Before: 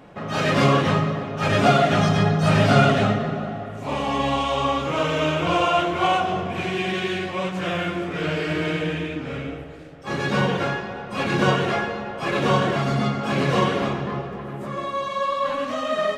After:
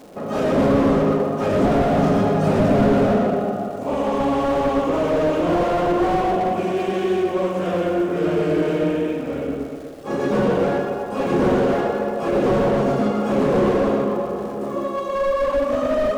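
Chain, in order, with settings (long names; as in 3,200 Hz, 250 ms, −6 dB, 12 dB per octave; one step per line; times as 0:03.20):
octave-band graphic EQ 125/250/500/2,000/4,000 Hz −8/+5/+6/−7/−8 dB
surface crackle 280 per second −35 dBFS
on a send: tape delay 122 ms, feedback 50%, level −3.5 dB, low-pass 2,700 Hz
on the sum: four-comb reverb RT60 1.3 s, combs from 31 ms, DRR 8 dB
slew-rate limiting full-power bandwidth 86 Hz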